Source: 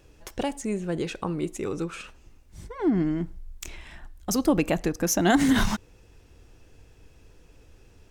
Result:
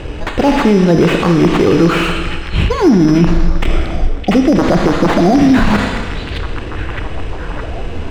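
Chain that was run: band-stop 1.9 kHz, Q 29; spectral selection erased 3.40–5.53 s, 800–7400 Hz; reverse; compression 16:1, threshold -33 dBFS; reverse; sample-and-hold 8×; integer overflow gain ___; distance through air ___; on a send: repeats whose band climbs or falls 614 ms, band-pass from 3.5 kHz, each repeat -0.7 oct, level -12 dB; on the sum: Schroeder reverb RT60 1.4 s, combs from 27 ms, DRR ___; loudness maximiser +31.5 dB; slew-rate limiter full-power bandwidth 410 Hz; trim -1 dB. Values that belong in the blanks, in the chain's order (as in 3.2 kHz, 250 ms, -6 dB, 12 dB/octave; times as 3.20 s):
27.5 dB, 110 m, 7 dB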